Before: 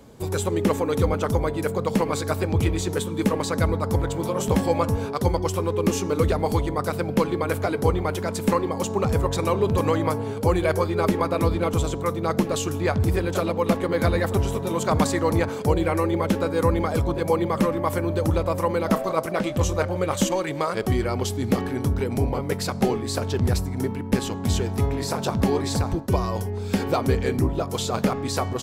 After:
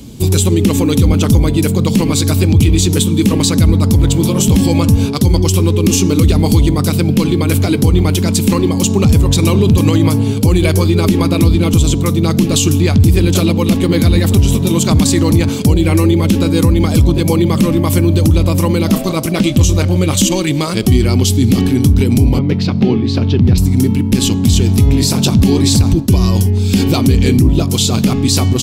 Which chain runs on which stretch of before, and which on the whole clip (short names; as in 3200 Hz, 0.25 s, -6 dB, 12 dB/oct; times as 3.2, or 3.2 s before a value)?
22.39–23.58 HPF 86 Hz + air absorption 280 m
whole clip: band shelf 910 Hz -14.5 dB 2.5 oct; maximiser +18.5 dB; gain -1 dB